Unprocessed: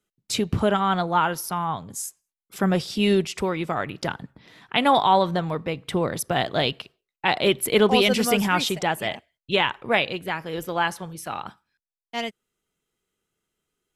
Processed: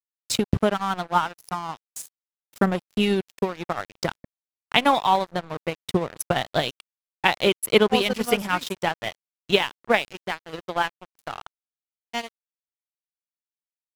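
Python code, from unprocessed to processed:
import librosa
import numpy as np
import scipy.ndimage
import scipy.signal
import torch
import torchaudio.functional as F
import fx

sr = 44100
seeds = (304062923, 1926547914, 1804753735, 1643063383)

y = fx.transient(x, sr, attack_db=8, sustain_db=-6)
y = np.sign(y) * np.maximum(np.abs(y) - 10.0 ** (-30.0 / 20.0), 0.0)
y = F.gain(torch.from_numpy(y), -2.5).numpy()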